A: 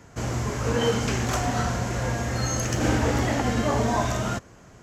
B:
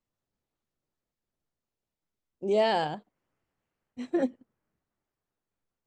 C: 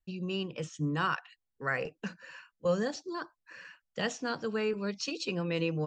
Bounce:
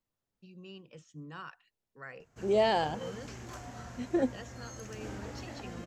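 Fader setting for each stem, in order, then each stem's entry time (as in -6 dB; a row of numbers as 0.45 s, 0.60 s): -20.0 dB, -1.5 dB, -14.5 dB; 2.20 s, 0.00 s, 0.35 s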